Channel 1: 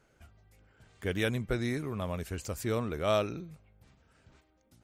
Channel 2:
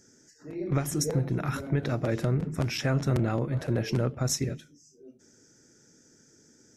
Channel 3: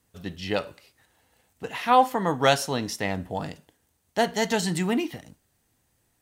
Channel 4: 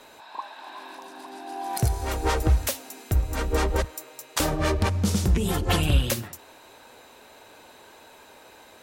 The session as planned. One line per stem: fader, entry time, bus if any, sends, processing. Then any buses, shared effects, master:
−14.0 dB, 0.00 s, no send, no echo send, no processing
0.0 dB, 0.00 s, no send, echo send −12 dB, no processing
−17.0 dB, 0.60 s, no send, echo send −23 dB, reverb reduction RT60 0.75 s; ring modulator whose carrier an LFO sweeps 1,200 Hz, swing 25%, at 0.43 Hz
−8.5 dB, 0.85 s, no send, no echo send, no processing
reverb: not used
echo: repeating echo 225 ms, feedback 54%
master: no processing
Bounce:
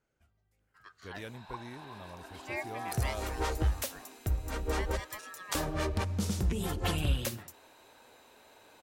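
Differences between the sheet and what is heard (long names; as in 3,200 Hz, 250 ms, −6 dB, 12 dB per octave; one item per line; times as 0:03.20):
stem 2: muted
stem 4: entry 0.85 s → 1.15 s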